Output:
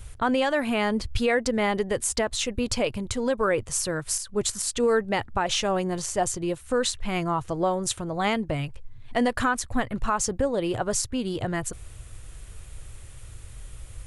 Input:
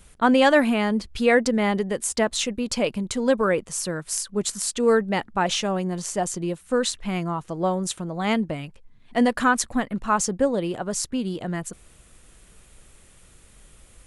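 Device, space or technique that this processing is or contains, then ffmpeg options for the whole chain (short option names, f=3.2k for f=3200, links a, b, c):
car stereo with a boomy subwoofer: -af "lowshelf=f=140:t=q:w=3:g=8,alimiter=limit=-17dB:level=0:latency=1:release=282,volume=3dB"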